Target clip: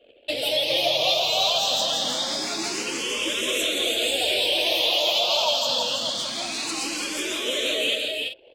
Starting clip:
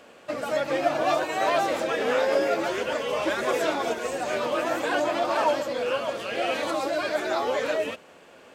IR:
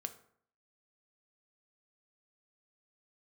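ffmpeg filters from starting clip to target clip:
-filter_complex "[0:a]asettb=1/sr,asplit=3[a][b][c];[a]atrim=end=4.594[d];[b]atrim=start=4.59:end=5.65,asetpts=PTS-STARTPTS,afade=t=in:d=0.004:c=qsin,afade=t=out:st=1.056:d=0.004:c=qsin,highpass=240[e];[c]atrim=start=5.646[f];[d][e]acrossfade=d=0.004:c1=hsin:c2=qsin[g];[g][f]acrossfade=d=0.004:c1=qsin:c2=hsin,anlmdn=0.0398,highshelf=f=2.3k:t=q:w=3:g=13,acompressor=threshold=-25dB:ratio=3,asoftclip=type=tanh:threshold=-18.5dB,aecho=1:1:165|335|380:0.447|0.562|0.266,asplit=2[h][i];[i]afreqshift=0.25[j];[h][j]amix=inputs=2:normalize=1,volume=5dB"

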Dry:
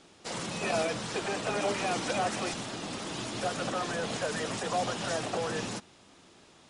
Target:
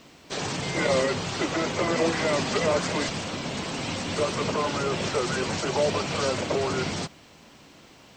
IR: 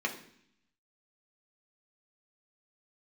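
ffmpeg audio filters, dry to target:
-af "asetrate=36162,aresample=44100,acrusher=bits=11:mix=0:aa=0.000001,volume=6dB"

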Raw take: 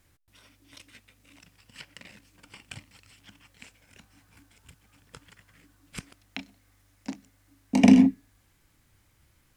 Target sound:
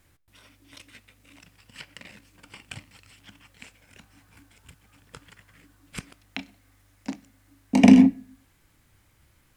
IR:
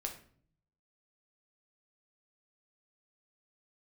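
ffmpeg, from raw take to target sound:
-filter_complex "[0:a]asplit=2[a][b];[b]lowpass=f=6k:w=0.5412,lowpass=f=6k:w=1.3066[c];[1:a]atrim=start_sample=2205,afade=t=out:st=0.41:d=0.01,atrim=end_sample=18522,lowshelf=f=220:g=-10.5[d];[c][d]afir=irnorm=-1:irlink=0,volume=-12.5dB[e];[a][e]amix=inputs=2:normalize=0,volume=2dB"

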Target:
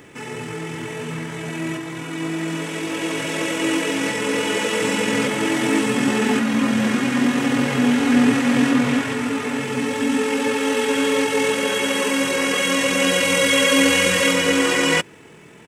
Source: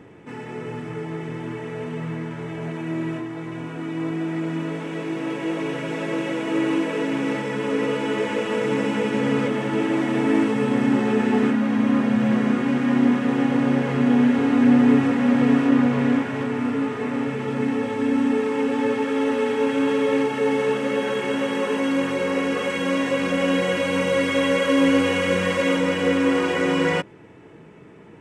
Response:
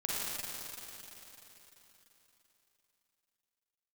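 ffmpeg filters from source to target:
-af "atempo=1.8,crystalizer=i=7.5:c=0"

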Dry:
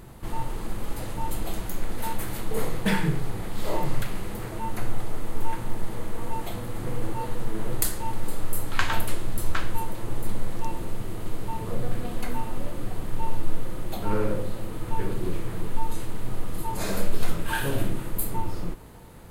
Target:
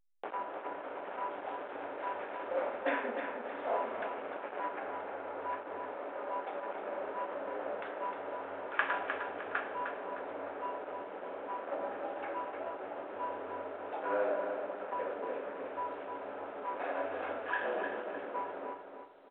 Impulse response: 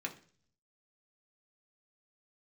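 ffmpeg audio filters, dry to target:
-filter_complex "[0:a]asplit=2[a][b];[1:a]atrim=start_sample=2205,asetrate=61740,aresample=44100[c];[b][c]afir=irnorm=-1:irlink=0,volume=-11dB[d];[a][d]amix=inputs=2:normalize=0,afreqshift=85,aeval=exprs='sgn(val(0))*max(abs(val(0))-0.0237,0)':c=same,acompressor=mode=upward:threshold=-23dB:ratio=2.5,highpass=f=430:w=0.5412,highpass=f=430:w=1.3066,equalizer=f=440:t=q:w=4:g=-5,equalizer=f=1.1k:t=q:w=4:g=-6,equalizer=f=2k:t=q:w=4:g=-7,lowpass=f=2.1k:w=0.5412,lowpass=f=2.1k:w=1.3066,aecho=1:1:306|612|918|1224:0.447|0.156|0.0547|0.0192" -ar 8000 -c:a pcm_alaw

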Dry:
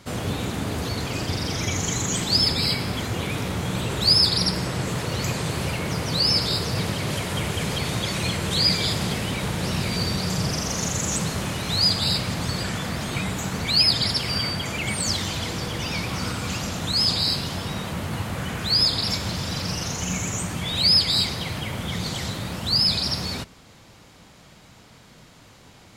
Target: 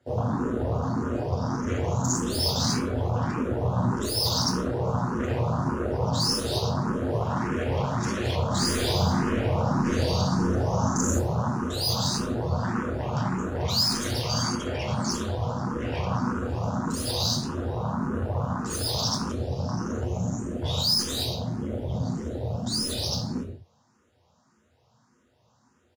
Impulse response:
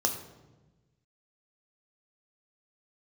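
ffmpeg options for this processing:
-filter_complex "[0:a]highpass=f=48:w=0.5412,highpass=f=48:w=1.3066,afwtdn=0.0316,highshelf=f=7.3k:g=-10.5,aeval=exprs='(tanh(20*val(0)+0.7)-tanh(0.7))/20':c=same,asplit=3[a][b][c];[a]afade=t=out:st=8.5:d=0.02[d];[b]aecho=1:1:60|129|208.4|299.6|404.5:0.631|0.398|0.251|0.158|0.1,afade=t=in:st=8.5:d=0.02,afade=t=out:st=11.18:d=0.02[e];[c]afade=t=in:st=11.18:d=0.02[f];[d][e][f]amix=inputs=3:normalize=0[g];[1:a]atrim=start_sample=2205,afade=t=out:st=0.24:d=0.01,atrim=end_sample=11025[h];[g][h]afir=irnorm=-1:irlink=0,asplit=2[i][j];[j]afreqshift=1.7[k];[i][k]amix=inputs=2:normalize=1"

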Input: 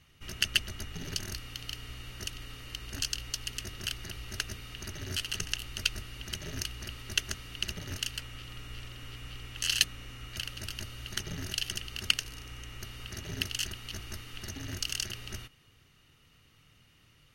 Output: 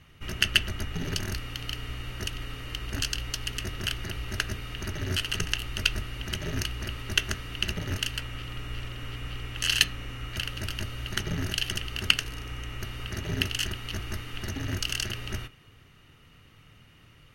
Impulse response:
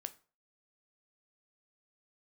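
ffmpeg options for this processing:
-filter_complex "[0:a]asplit=2[a][b];[1:a]atrim=start_sample=2205,lowpass=3.2k[c];[b][c]afir=irnorm=-1:irlink=0,volume=4dB[d];[a][d]amix=inputs=2:normalize=0,volume=2dB"

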